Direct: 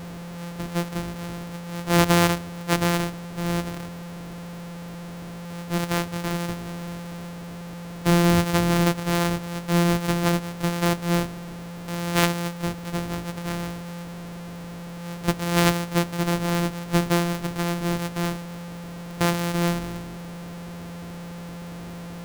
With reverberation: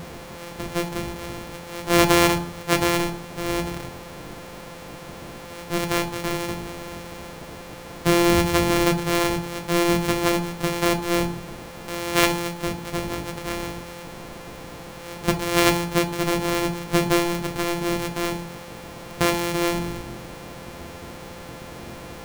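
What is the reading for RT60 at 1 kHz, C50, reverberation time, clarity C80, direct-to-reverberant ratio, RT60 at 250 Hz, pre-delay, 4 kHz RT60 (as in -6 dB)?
0.45 s, 13.5 dB, 0.45 s, 18.0 dB, 6.0 dB, 0.60 s, 9 ms, 0.35 s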